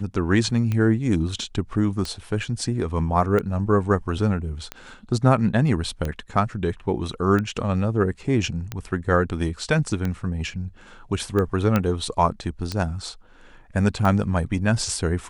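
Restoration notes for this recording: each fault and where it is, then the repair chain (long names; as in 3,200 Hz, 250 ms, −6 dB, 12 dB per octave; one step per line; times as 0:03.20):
scratch tick 45 rpm −14 dBFS
0:11.76: click −8 dBFS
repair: click removal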